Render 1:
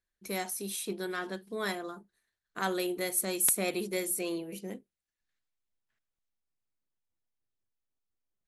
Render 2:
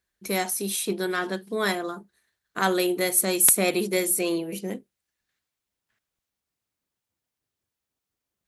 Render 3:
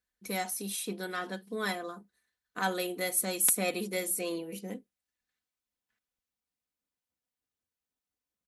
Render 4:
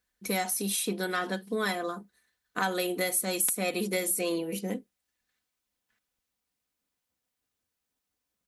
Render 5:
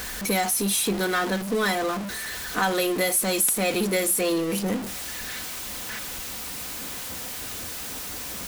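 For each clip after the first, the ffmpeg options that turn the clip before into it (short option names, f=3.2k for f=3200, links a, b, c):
-af "highpass=46,volume=8.5dB"
-af "aecho=1:1:4:0.46,volume=-8.5dB"
-af "acompressor=threshold=-32dB:ratio=6,volume=7dB"
-af "aeval=exprs='val(0)+0.5*0.0335*sgn(val(0))':c=same,volume=3dB"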